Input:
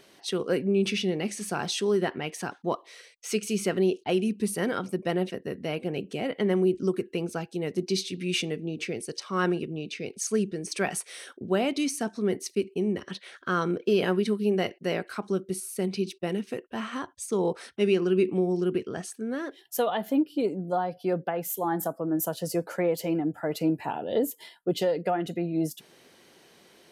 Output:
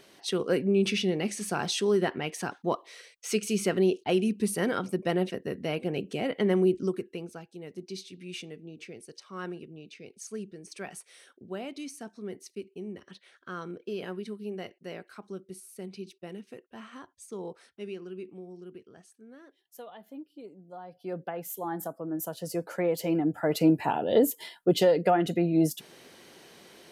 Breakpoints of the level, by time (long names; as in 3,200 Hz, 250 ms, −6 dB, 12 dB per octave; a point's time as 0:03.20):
0:06.70 0 dB
0:07.44 −12 dB
0:17.36 −12 dB
0:18.40 −19 dB
0:20.68 −19 dB
0:21.22 −6 dB
0:22.27 −6 dB
0:23.61 +4 dB